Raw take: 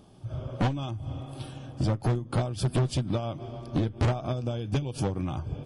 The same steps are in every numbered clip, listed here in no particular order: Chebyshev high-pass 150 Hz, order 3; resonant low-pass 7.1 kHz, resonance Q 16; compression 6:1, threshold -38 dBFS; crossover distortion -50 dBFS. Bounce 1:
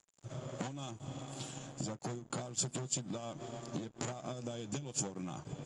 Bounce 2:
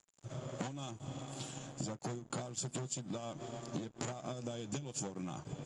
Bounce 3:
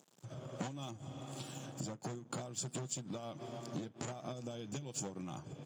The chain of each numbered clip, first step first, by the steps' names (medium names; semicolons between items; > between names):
Chebyshev high-pass > crossover distortion > compression > resonant low-pass; Chebyshev high-pass > crossover distortion > resonant low-pass > compression; resonant low-pass > crossover distortion > compression > Chebyshev high-pass